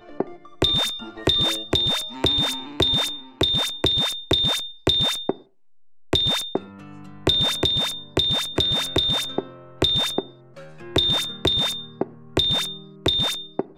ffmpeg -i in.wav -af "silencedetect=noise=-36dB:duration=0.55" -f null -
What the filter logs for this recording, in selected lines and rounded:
silence_start: 5.37
silence_end: 6.13 | silence_duration: 0.76